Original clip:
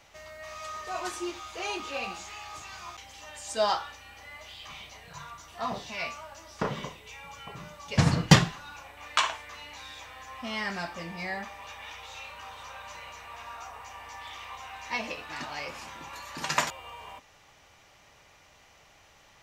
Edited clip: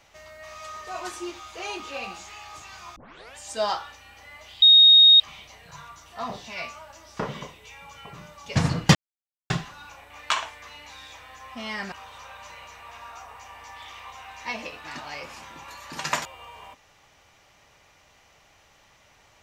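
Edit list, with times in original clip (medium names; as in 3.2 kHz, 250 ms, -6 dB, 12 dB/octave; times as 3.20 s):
2.96 s: tape start 0.40 s
4.62 s: add tone 3.73 kHz -9.5 dBFS 0.58 s
8.37 s: insert silence 0.55 s
10.79–12.37 s: delete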